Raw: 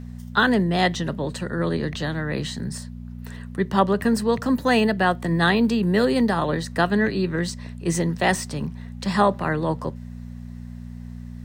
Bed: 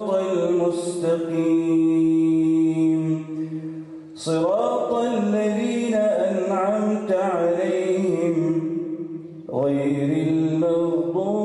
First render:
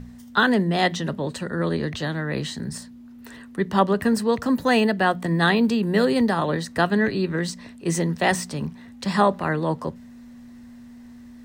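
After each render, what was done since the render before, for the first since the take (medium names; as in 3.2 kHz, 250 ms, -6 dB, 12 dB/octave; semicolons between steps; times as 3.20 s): de-hum 60 Hz, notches 3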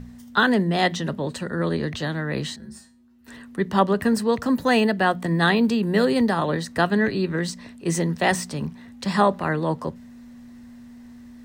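2.56–3.28 s: feedback comb 73 Hz, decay 0.3 s, harmonics odd, mix 90%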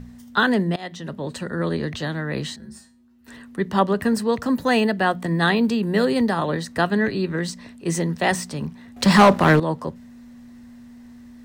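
0.76–1.39 s: fade in, from -20.5 dB; 8.96–9.60 s: waveshaping leveller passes 3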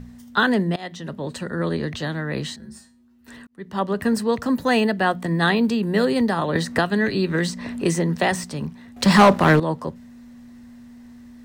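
3.47–4.09 s: fade in; 6.55–8.44 s: three bands compressed up and down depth 100%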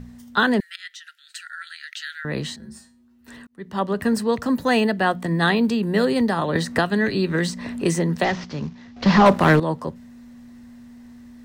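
0.60–2.25 s: brick-wall FIR high-pass 1.3 kHz; 8.24–9.26 s: CVSD coder 32 kbps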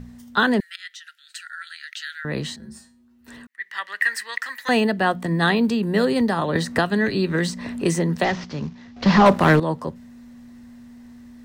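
3.47–4.69 s: resonant high-pass 1.9 kHz, resonance Q 7.9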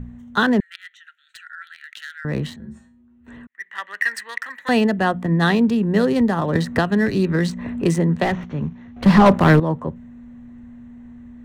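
local Wiener filter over 9 samples; bass shelf 190 Hz +8 dB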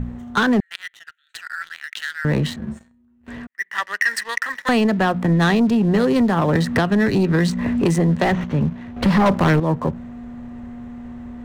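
compression 3:1, threshold -21 dBFS, peak gain reduction 10 dB; waveshaping leveller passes 2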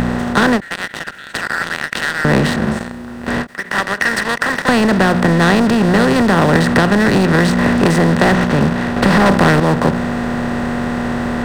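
spectral levelling over time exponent 0.4; endings held to a fixed fall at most 330 dB/s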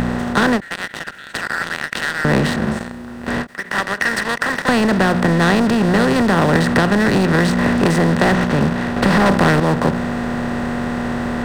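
trim -2.5 dB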